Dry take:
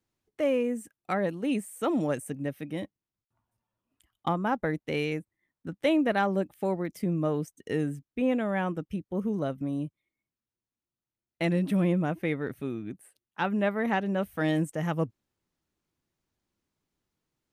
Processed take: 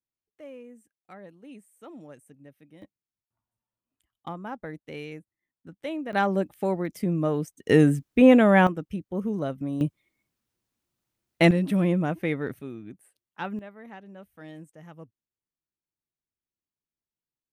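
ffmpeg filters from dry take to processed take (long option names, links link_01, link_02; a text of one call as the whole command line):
ffmpeg -i in.wav -af "asetnsamples=nb_out_samples=441:pad=0,asendcmd='2.82 volume volume -8.5dB;6.13 volume volume 2.5dB;7.69 volume volume 11.5dB;8.67 volume volume 1dB;9.81 volume volume 10dB;11.51 volume volume 2dB;12.59 volume volume -4.5dB;13.59 volume volume -17dB',volume=-17.5dB" out.wav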